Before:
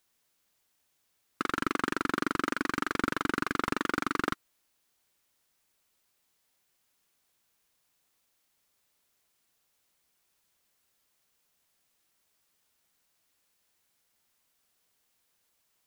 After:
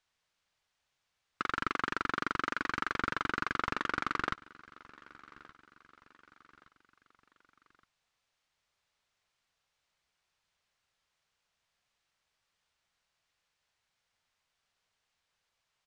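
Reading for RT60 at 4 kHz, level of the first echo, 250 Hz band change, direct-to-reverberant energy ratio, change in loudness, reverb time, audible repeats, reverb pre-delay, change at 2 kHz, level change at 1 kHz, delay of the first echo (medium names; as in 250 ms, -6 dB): no reverb, -21.5 dB, -9.5 dB, no reverb, -3.0 dB, no reverb, 3, no reverb, -1.5 dB, -1.5 dB, 1170 ms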